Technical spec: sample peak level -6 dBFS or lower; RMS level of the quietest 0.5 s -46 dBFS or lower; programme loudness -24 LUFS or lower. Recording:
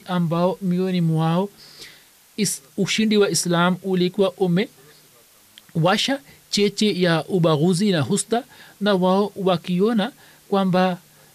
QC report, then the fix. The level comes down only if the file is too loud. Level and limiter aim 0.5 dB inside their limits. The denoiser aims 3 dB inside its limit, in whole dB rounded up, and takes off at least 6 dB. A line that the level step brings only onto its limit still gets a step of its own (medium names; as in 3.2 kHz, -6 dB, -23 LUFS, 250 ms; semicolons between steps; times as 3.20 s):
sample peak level -8.0 dBFS: pass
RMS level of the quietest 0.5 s -53 dBFS: pass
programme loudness -21.0 LUFS: fail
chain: trim -3.5 dB